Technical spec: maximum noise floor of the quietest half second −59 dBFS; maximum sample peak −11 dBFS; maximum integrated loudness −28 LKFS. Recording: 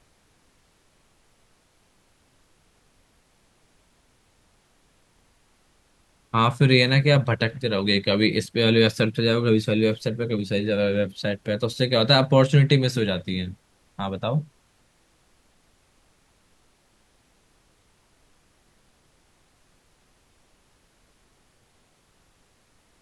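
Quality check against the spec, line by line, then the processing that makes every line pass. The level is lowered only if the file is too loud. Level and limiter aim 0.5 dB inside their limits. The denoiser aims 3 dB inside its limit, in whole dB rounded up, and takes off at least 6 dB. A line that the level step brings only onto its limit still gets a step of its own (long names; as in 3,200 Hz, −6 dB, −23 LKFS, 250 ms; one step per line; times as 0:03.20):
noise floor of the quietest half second −63 dBFS: in spec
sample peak −3.5 dBFS: out of spec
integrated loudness −21.5 LKFS: out of spec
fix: level −7 dB
brickwall limiter −11.5 dBFS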